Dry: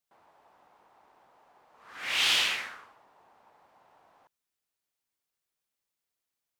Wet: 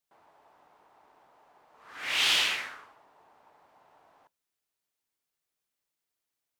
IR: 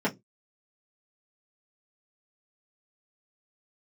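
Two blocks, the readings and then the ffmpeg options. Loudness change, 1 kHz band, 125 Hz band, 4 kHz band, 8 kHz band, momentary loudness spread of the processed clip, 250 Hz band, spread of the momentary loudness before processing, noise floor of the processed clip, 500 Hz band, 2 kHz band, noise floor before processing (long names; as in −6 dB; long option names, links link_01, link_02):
0.0 dB, +0.5 dB, can't be measured, 0.0 dB, 0.0 dB, 16 LU, +1.0 dB, 16 LU, below −85 dBFS, +1.0 dB, +0.5 dB, below −85 dBFS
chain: -filter_complex "[0:a]asplit=2[link_01][link_02];[1:a]atrim=start_sample=2205[link_03];[link_02][link_03]afir=irnorm=-1:irlink=0,volume=-28.5dB[link_04];[link_01][link_04]amix=inputs=2:normalize=0"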